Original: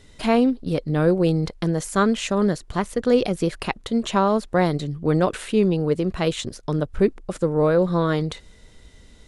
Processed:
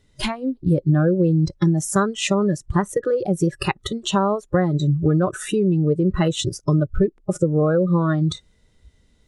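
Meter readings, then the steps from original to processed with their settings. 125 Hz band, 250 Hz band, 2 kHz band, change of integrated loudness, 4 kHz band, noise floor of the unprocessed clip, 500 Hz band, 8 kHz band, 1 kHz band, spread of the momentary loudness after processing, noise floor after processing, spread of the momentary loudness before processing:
+5.5 dB, +1.5 dB, 0.0 dB, +1.5 dB, +2.5 dB, -50 dBFS, -0.5 dB, +5.5 dB, -1.0 dB, 6 LU, -60 dBFS, 7 LU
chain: compression 6:1, threshold -24 dBFS, peak gain reduction 11.5 dB; peaking EQ 120 Hz +4.5 dB 2.1 oct; spectral noise reduction 20 dB; trim +8 dB

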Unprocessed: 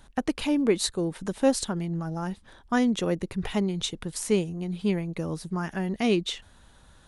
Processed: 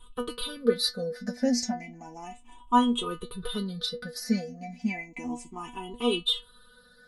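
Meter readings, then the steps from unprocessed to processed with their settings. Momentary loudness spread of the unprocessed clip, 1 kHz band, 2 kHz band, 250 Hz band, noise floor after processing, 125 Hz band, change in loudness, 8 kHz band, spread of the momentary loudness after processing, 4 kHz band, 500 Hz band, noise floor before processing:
8 LU, +4.0 dB, -3.5 dB, -3.5 dB, -56 dBFS, -10.0 dB, -2.0 dB, -4.0 dB, 14 LU, +4.0 dB, -3.5 dB, -56 dBFS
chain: drifting ripple filter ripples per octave 0.65, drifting +0.33 Hz, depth 22 dB; inharmonic resonator 240 Hz, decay 0.22 s, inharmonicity 0.002; trim +7 dB

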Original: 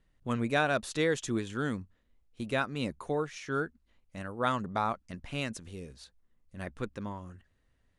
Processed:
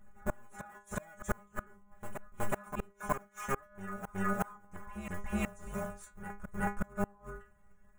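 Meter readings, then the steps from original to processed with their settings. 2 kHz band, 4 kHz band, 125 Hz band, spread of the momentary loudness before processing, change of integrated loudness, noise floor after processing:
-6.5 dB, -17.5 dB, -5.0 dB, 15 LU, -6.5 dB, -63 dBFS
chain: cycle switcher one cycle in 2, inverted; bass shelf 150 Hz +9.5 dB; inharmonic resonator 200 Hz, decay 0.29 s, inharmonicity 0.002; inverted gate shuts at -35 dBFS, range -32 dB; FFT filter 110 Hz 0 dB, 350 Hz -4 dB, 1.4 kHz +8 dB, 4.5 kHz -22 dB, 6.8 kHz +1 dB; on a send: reverse echo 370 ms -9.5 dB; on the sum: trim +16 dB

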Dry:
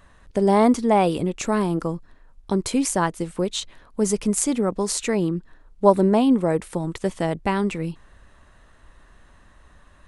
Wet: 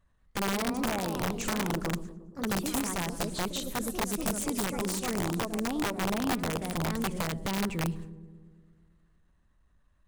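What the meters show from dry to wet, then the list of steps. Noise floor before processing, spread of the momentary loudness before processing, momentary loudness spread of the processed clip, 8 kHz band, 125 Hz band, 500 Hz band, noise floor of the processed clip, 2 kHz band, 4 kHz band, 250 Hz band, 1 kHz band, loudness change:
-53 dBFS, 12 LU, 5 LU, -6.5 dB, -7.0 dB, -13.5 dB, -67 dBFS, -1.5 dB, -2.5 dB, -10.0 dB, -9.5 dB, -9.5 dB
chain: companding laws mixed up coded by mu; feedback echo behind a high-pass 106 ms, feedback 83%, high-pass 4.5 kHz, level -16 dB; gate with hold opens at -33 dBFS; ever faster or slower copies 196 ms, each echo +2 st, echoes 3, each echo -6 dB; compression 6:1, threshold -23 dBFS, peak gain reduction 14 dB; tone controls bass +8 dB, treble +1 dB; on a send: filtered feedback delay 117 ms, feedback 70%, low-pass 1.2 kHz, level -13 dB; on the sum: integer overflow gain 16 dB; trim -7.5 dB

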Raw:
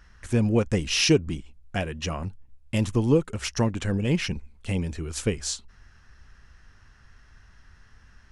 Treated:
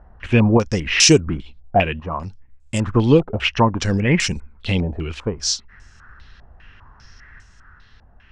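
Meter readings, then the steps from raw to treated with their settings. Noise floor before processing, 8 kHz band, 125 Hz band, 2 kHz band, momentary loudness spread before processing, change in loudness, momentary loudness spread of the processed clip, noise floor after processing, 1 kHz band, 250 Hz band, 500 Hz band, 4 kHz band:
-55 dBFS, +9.5 dB, +6.0 dB, +9.5 dB, 13 LU, +7.5 dB, 15 LU, -50 dBFS, +14.0 dB, +6.5 dB, +7.0 dB, +8.0 dB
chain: random-step tremolo; step-sequenced low-pass 5 Hz 720–7600 Hz; trim +7.5 dB

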